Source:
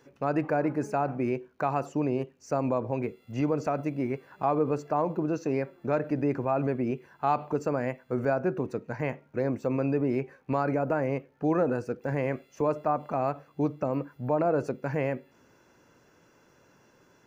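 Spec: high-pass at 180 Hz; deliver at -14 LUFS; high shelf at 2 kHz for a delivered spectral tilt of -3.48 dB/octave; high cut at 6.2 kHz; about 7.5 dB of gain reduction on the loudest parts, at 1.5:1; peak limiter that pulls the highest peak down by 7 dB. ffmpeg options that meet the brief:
-af "highpass=180,lowpass=6200,highshelf=f=2000:g=8,acompressor=threshold=0.00794:ratio=1.5,volume=16.8,alimiter=limit=0.794:level=0:latency=1"

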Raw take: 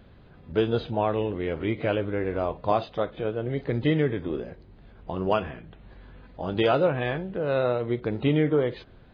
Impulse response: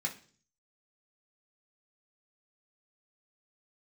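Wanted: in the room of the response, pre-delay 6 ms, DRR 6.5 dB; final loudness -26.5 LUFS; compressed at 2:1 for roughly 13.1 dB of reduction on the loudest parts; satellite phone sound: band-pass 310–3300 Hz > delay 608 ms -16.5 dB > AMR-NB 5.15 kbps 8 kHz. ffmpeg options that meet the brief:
-filter_complex "[0:a]acompressor=threshold=0.00708:ratio=2,asplit=2[s0][s1];[1:a]atrim=start_sample=2205,adelay=6[s2];[s1][s2]afir=irnorm=-1:irlink=0,volume=0.355[s3];[s0][s3]amix=inputs=2:normalize=0,highpass=310,lowpass=3300,aecho=1:1:608:0.15,volume=5.01" -ar 8000 -c:a libopencore_amrnb -b:a 5150

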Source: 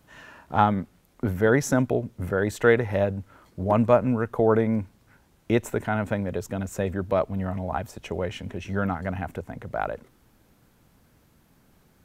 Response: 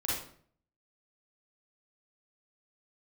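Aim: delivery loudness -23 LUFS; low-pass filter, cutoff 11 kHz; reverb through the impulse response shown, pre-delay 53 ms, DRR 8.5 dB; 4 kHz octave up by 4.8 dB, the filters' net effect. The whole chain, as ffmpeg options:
-filter_complex "[0:a]lowpass=11000,equalizer=f=4000:t=o:g=6.5,asplit=2[s0][s1];[1:a]atrim=start_sample=2205,adelay=53[s2];[s1][s2]afir=irnorm=-1:irlink=0,volume=0.188[s3];[s0][s3]amix=inputs=2:normalize=0,volume=1.26"

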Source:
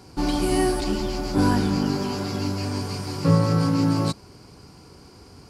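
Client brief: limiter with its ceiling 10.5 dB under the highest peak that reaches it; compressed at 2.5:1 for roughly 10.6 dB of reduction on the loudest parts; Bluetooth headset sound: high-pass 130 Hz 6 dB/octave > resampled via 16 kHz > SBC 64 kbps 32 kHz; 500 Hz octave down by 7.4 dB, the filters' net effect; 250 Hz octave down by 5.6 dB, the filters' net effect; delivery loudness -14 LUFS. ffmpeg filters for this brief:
-af "equalizer=f=250:t=o:g=-3.5,equalizer=f=500:t=o:g=-8.5,acompressor=threshold=0.0282:ratio=2.5,alimiter=level_in=1.88:limit=0.0631:level=0:latency=1,volume=0.531,highpass=f=130:p=1,aresample=16000,aresample=44100,volume=22.4" -ar 32000 -c:a sbc -b:a 64k

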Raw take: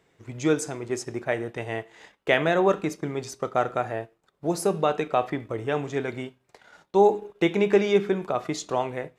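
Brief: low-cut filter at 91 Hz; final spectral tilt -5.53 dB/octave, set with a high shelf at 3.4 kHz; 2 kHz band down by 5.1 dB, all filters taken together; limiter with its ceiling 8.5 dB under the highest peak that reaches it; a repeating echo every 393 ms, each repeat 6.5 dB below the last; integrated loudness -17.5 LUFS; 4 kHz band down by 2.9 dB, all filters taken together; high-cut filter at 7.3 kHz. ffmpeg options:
-af "highpass=91,lowpass=7300,equalizer=f=2000:t=o:g=-6.5,highshelf=f=3400:g=4.5,equalizer=f=4000:t=o:g=-4,alimiter=limit=0.168:level=0:latency=1,aecho=1:1:393|786|1179|1572|1965|2358:0.473|0.222|0.105|0.0491|0.0231|0.0109,volume=3.55"

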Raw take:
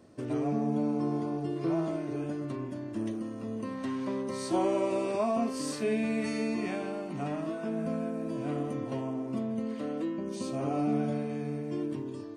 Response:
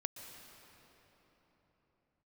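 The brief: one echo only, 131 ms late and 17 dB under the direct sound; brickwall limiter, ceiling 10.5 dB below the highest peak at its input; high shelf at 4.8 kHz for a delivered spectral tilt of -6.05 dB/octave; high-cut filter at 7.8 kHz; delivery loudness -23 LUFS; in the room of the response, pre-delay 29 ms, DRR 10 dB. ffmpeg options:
-filter_complex "[0:a]lowpass=7800,highshelf=f=4800:g=6.5,alimiter=level_in=1.58:limit=0.0631:level=0:latency=1,volume=0.631,aecho=1:1:131:0.141,asplit=2[s0][s1];[1:a]atrim=start_sample=2205,adelay=29[s2];[s1][s2]afir=irnorm=-1:irlink=0,volume=0.355[s3];[s0][s3]amix=inputs=2:normalize=0,volume=4.73"

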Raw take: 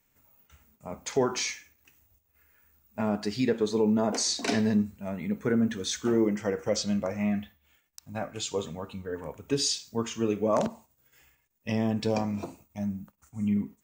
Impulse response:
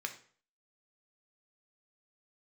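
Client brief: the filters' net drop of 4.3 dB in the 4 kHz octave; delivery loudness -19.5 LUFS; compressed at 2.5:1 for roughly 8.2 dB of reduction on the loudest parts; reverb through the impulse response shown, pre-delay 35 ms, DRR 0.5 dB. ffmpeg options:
-filter_complex "[0:a]equalizer=f=4000:t=o:g=-5.5,acompressor=threshold=0.0224:ratio=2.5,asplit=2[s0][s1];[1:a]atrim=start_sample=2205,adelay=35[s2];[s1][s2]afir=irnorm=-1:irlink=0,volume=0.841[s3];[s0][s3]amix=inputs=2:normalize=0,volume=5.62"

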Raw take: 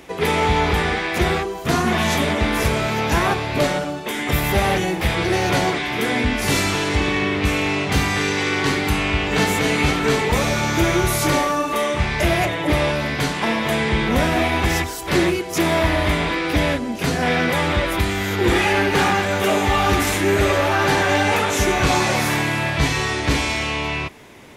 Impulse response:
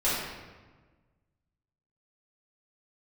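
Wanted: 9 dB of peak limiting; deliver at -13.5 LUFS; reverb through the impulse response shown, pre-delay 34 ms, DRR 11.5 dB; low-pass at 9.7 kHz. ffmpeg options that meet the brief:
-filter_complex "[0:a]lowpass=9700,alimiter=limit=0.15:level=0:latency=1,asplit=2[s0][s1];[1:a]atrim=start_sample=2205,adelay=34[s2];[s1][s2]afir=irnorm=-1:irlink=0,volume=0.0668[s3];[s0][s3]amix=inputs=2:normalize=0,volume=3.55"

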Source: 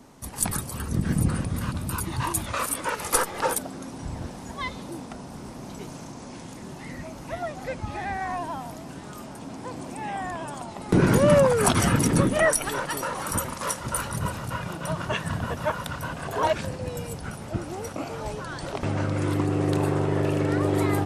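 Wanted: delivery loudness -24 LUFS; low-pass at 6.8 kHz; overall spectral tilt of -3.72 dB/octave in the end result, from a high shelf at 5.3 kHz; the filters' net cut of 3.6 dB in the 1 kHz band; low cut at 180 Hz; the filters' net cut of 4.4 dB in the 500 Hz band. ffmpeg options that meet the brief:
-af "highpass=180,lowpass=6800,equalizer=f=500:t=o:g=-4.5,equalizer=f=1000:t=o:g=-3.5,highshelf=f=5300:g=8.5,volume=1.88"

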